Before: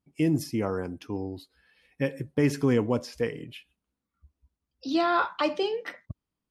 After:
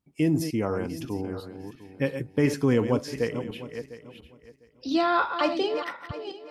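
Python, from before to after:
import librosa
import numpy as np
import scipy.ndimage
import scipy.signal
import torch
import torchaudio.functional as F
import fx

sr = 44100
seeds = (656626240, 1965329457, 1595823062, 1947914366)

y = fx.reverse_delay_fb(x, sr, ms=351, feedback_pct=43, wet_db=-9)
y = F.gain(torch.from_numpy(y), 1.0).numpy()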